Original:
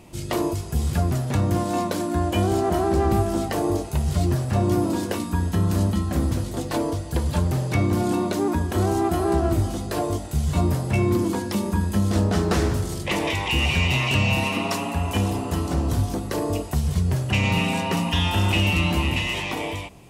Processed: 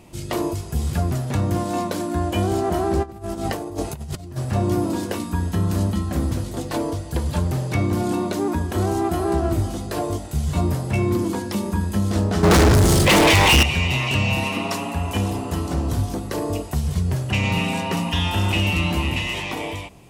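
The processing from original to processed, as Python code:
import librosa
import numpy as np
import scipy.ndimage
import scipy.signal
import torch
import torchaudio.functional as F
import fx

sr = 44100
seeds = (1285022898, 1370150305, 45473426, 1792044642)

y = fx.over_compress(x, sr, threshold_db=-27.0, ratio=-0.5, at=(3.02, 4.36), fade=0.02)
y = fx.leveller(y, sr, passes=5, at=(12.43, 13.63))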